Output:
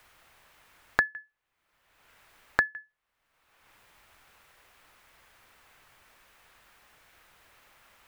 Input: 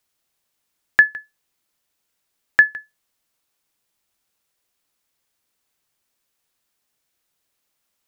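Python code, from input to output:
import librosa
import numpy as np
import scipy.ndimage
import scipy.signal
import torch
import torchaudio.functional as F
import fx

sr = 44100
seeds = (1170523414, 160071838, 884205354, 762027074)

y = fx.peak_eq(x, sr, hz=250.0, db=-10.5, octaves=2.5)
y = fx.band_squash(y, sr, depth_pct=100)
y = y * 10.0 ** (-4.5 / 20.0)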